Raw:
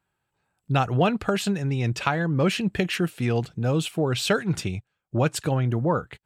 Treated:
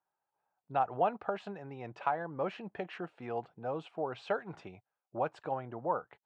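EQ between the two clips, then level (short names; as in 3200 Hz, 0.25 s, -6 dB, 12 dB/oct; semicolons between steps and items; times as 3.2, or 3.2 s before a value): band-pass 800 Hz, Q 2.1; air absorption 76 m; -2.5 dB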